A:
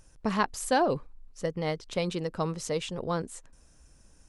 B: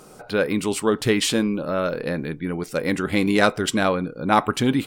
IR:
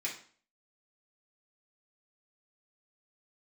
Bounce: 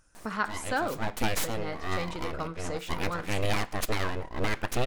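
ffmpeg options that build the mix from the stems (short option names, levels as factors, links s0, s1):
-filter_complex "[0:a]equalizer=f=1400:t=o:w=0.39:g=14.5,volume=0.398,asplit=3[s0][s1][s2];[s1]volume=0.355[s3];[1:a]aeval=exprs='abs(val(0))':c=same,adelay=150,volume=0.944,asplit=2[s4][s5];[s5]volume=0.0891[s6];[s2]apad=whole_len=221014[s7];[s4][s7]sidechaincompress=threshold=0.01:ratio=8:attack=11:release=538[s8];[2:a]atrim=start_sample=2205[s9];[s3][s6]amix=inputs=2:normalize=0[s10];[s10][s9]afir=irnorm=-1:irlink=0[s11];[s0][s8][s11]amix=inputs=3:normalize=0,alimiter=limit=0.188:level=0:latency=1:release=440"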